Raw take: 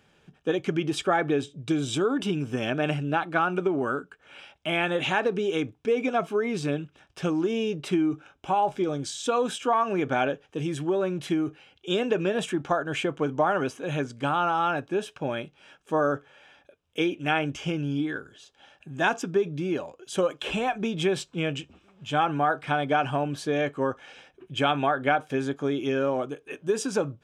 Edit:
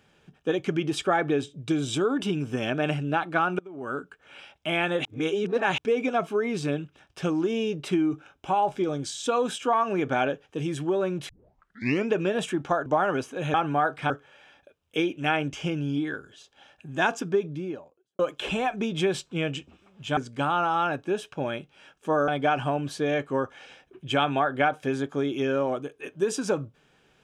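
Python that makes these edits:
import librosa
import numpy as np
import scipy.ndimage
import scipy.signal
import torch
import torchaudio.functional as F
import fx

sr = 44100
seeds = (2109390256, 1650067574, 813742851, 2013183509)

y = fx.studio_fade_out(x, sr, start_s=19.26, length_s=0.95)
y = fx.edit(y, sr, fx.fade_in_from(start_s=3.59, length_s=0.41, curve='qua', floor_db=-22.0),
    fx.reverse_span(start_s=5.05, length_s=0.73),
    fx.tape_start(start_s=11.29, length_s=0.84),
    fx.cut(start_s=12.86, length_s=0.47),
    fx.swap(start_s=14.01, length_s=2.11, other_s=22.19, other_length_s=0.56), tone=tone)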